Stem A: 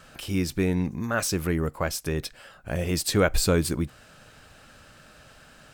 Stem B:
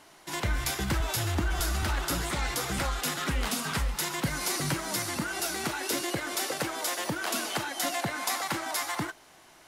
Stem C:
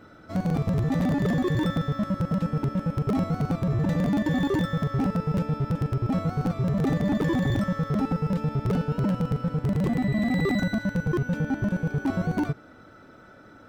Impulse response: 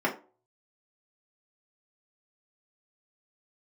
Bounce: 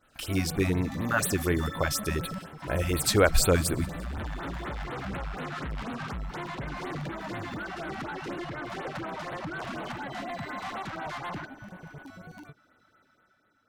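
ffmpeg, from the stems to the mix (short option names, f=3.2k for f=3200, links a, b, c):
-filter_complex "[0:a]agate=range=-33dB:threshold=-41dB:ratio=3:detection=peak,equalizer=f=180:w=1.5:g=-7.5,volume=1.5dB,asplit=3[a][b][c];[b]volume=-23.5dB[d];[1:a]lowpass=1.6k,alimiter=limit=-22.5dB:level=0:latency=1:release=285,asoftclip=type=tanh:threshold=-38.5dB,adelay=2350,volume=0.5dB[e];[2:a]tiltshelf=f=870:g=-6,alimiter=limit=-24dB:level=0:latency=1:release=77,volume=-4dB[f];[c]apad=whole_len=603564[g];[f][g]sidechaingate=range=-15dB:threshold=-45dB:ratio=16:detection=peak[h];[e][h]amix=inputs=2:normalize=0,dynaudnorm=f=140:g=9:m=6dB,alimiter=level_in=5.5dB:limit=-24dB:level=0:latency=1,volume=-5.5dB,volume=0dB[i];[d]aecho=0:1:177|354|531|708|885|1062|1239:1|0.49|0.24|0.118|0.0576|0.0282|0.0138[j];[a][i][j]amix=inputs=3:normalize=0,afftfilt=real='re*(1-between(b*sr/1024,360*pow(6400/360,0.5+0.5*sin(2*PI*4.1*pts/sr))/1.41,360*pow(6400/360,0.5+0.5*sin(2*PI*4.1*pts/sr))*1.41))':imag='im*(1-between(b*sr/1024,360*pow(6400/360,0.5+0.5*sin(2*PI*4.1*pts/sr))/1.41,360*pow(6400/360,0.5+0.5*sin(2*PI*4.1*pts/sr))*1.41))':win_size=1024:overlap=0.75"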